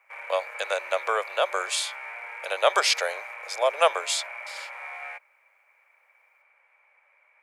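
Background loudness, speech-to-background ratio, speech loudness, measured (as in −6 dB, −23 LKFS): −37.0 LKFS, 11.0 dB, −26.0 LKFS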